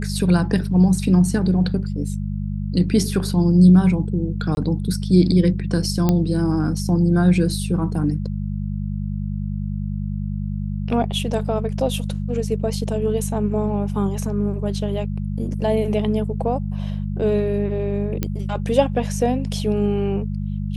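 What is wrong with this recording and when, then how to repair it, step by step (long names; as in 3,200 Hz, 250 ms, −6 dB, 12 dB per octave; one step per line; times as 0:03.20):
mains hum 50 Hz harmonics 4 −25 dBFS
0:04.55–0:04.57: drop-out 21 ms
0:06.09: click −6 dBFS
0:18.23: click −9 dBFS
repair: click removal
hum removal 50 Hz, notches 4
repair the gap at 0:04.55, 21 ms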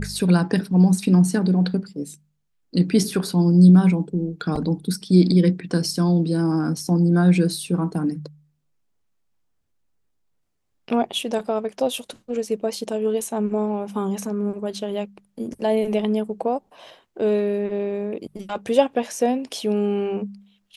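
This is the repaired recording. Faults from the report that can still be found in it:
none of them is left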